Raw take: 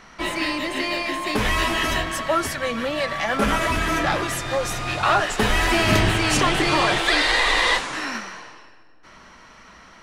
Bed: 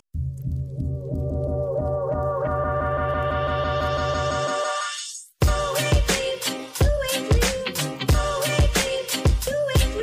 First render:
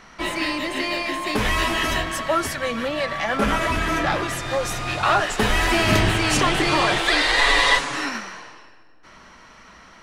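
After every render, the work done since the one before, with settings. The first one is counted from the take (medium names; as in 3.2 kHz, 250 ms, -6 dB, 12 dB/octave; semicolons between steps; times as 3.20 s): 2.88–4.43 s: treble shelf 5.9 kHz -4.5 dB; 7.37–8.09 s: comb 7.1 ms, depth 78%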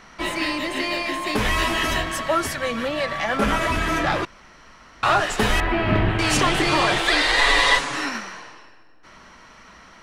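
4.25–5.03 s: room tone; 5.60–6.19 s: distance through air 480 m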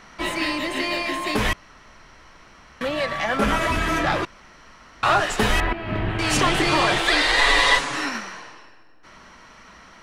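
1.53–2.81 s: room tone; 5.73–6.44 s: fade in, from -12.5 dB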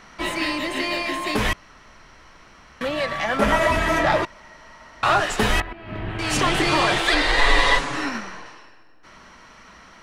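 3.40–5.04 s: small resonant body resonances 630/910/1900 Hz, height 10 dB; 5.62–6.56 s: fade in, from -13.5 dB; 7.14–8.46 s: tilt EQ -1.5 dB/octave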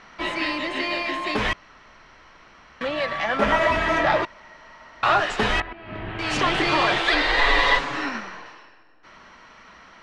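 low-pass 4.5 kHz 12 dB/octave; bass shelf 260 Hz -6 dB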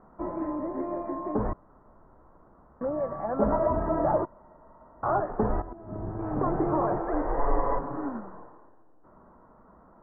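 Bessel low-pass 670 Hz, order 8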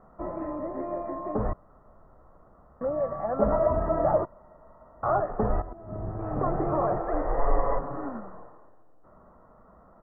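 comb 1.6 ms, depth 35%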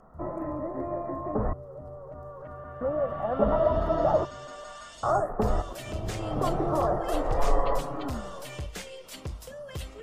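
add bed -18 dB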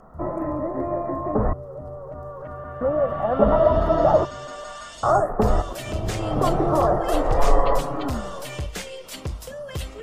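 trim +6.5 dB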